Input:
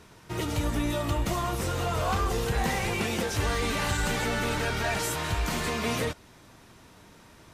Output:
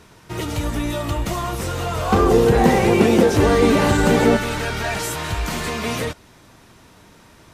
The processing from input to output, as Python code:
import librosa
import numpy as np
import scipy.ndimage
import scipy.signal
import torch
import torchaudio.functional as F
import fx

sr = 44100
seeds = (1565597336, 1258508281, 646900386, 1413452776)

y = fx.peak_eq(x, sr, hz=330.0, db=14.5, octaves=2.7, at=(2.12, 4.37))
y = y * librosa.db_to_amplitude(4.5)